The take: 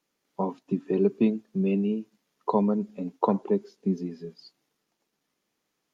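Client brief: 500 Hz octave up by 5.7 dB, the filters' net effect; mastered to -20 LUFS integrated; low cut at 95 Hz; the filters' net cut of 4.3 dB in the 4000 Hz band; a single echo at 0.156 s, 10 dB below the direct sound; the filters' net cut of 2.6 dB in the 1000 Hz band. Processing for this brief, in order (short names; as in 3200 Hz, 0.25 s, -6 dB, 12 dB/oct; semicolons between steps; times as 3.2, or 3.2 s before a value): HPF 95 Hz; bell 500 Hz +8.5 dB; bell 1000 Hz -5.5 dB; bell 4000 Hz -5.5 dB; echo 0.156 s -10 dB; gain +4.5 dB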